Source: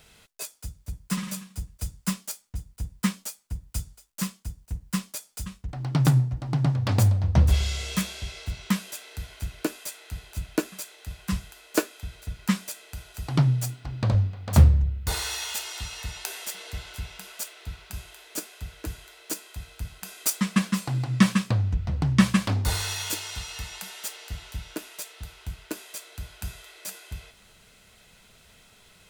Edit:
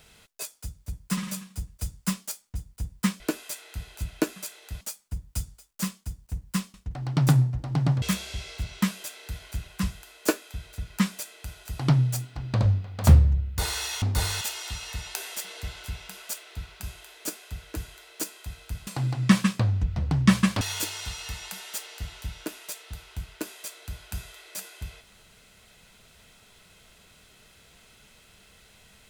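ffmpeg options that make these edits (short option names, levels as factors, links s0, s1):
-filter_complex "[0:a]asplit=10[s0][s1][s2][s3][s4][s5][s6][s7][s8][s9];[s0]atrim=end=3.202[s10];[s1]atrim=start=9.558:end=11.172[s11];[s2]atrim=start=3.198:end=5.132[s12];[s3]atrim=start=5.518:end=6.802[s13];[s4]atrim=start=7.898:end=9.562[s14];[s5]atrim=start=11.168:end=15.512[s15];[s6]atrim=start=22.518:end=22.912[s16];[s7]atrim=start=15.508:end=19.972[s17];[s8]atrim=start=20.778:end=22.522[s18];[s9]atrim=start=22.908[s19];[s10][s11]acrossfade=d=0.004:c1=hsin:c2=hsin[s20];[s20][s12]acrossfade=d=0.004:c1=hsin:c2=hsin[s21];[s21][s13]acrossfade=d=0.004:c1=hsin:c2=hsin[s22];[s22][s14]acrossfade=d=0.004:c1=hsin:c2=hsin[s23];[s23][s15]acrossfade=d=0.004:c1=hsin:c2=hsin[s24];[s24][s16]acrossfade=d=0.004:c1=hsin:c2=hsin[s25];[s25][s17]acrossfade=d=0.004:c1=hsin:c2=hsin[s26];[s26][s18]acrossfade=d=0.004:c1=hsin:c2=hsin[s27];[s27][s19]acrossfade=d=0.004:c1=hsin:c2=hsin"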